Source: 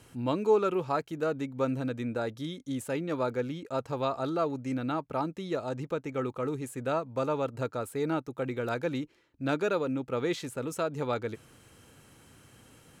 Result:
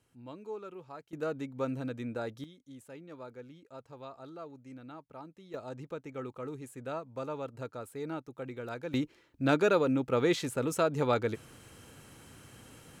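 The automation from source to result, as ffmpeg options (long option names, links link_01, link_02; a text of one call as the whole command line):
ffmpeg -i in.wav -af "asetnsamples=nb_out_samples=441:pad=0,asendcmd='1.13 volume volume -4.5dB;2.44 volume volume -16dB;5.54 volume volume -8dB;8.94 volume volume 3dB',volume=-17dB" out.wav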